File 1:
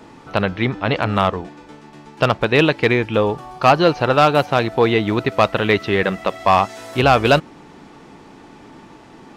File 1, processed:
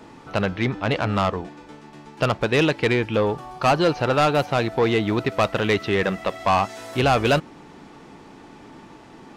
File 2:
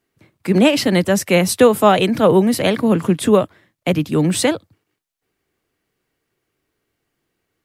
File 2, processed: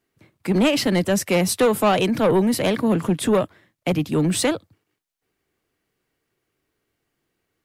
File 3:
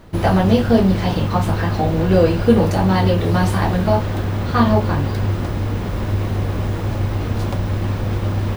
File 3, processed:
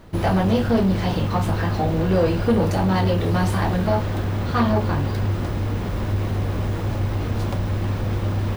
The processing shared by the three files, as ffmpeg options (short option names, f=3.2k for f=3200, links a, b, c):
-af "asoftclip=type=tanh:threshold=-10dB,volume=-2dB"